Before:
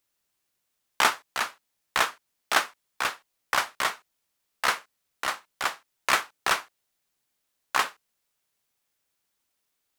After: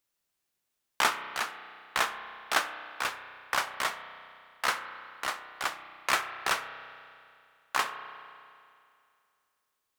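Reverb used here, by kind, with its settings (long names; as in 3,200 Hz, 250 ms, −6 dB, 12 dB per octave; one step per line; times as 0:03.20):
spring reverb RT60 2.4 s, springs 32 ms, chirp 70 ms, DRR 9.5 dB
level −4 dB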